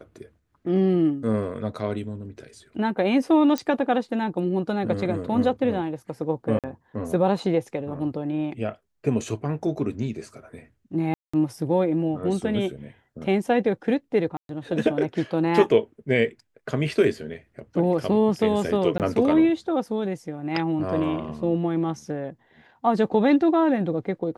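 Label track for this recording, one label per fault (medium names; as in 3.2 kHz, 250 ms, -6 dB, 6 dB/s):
3.580000	3.580000	pop -12 dBFS
6.590000	6.640000	dropout 47 ms
11.140000	11.340000	dropout 195 ms
14.370000	14.490000	dropout 122 ms
18.980000	19.000000	dropout 18 ms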